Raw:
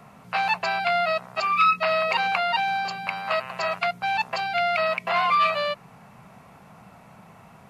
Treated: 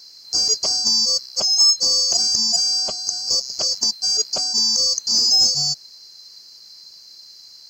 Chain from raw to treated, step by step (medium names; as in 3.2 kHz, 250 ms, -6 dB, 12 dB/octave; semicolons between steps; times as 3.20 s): split-band scrambler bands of 4 kHz; in parallel at -11.5 dB: saturation -21.5 dBFS, distortion -12 dB; on the sum: trim +3.5 dB